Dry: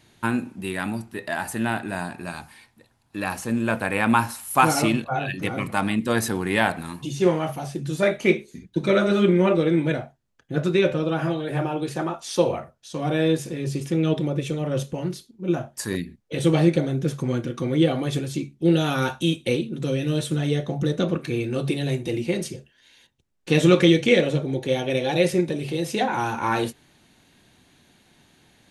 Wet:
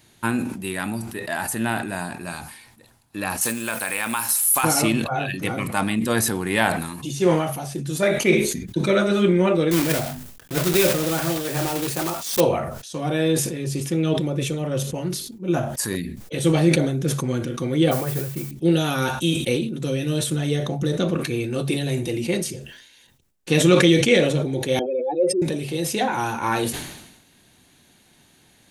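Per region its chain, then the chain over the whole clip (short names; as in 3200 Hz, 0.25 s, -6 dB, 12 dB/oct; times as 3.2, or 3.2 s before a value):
3.41–4.64 tilt +3.5 dB/oct + compressor 3:1, threshold -23 dBFS + requantised 8-bit, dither none
9.71–12.42 block floating point 3-bit + notches 50/100/150/200/250 Hz
17.91–18.51 LPF 2100 Hz 24 dB/oct + bell 280 Hz -13 dB 0.31 oct + modulation noise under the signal 16 dB
24.79–25.42 spectral contrast raised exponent 3 + HPF 300 Hz 24 dB/oct
whole clip: high shelf 7800 Hz +11 dB; sustainer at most 57 dB/s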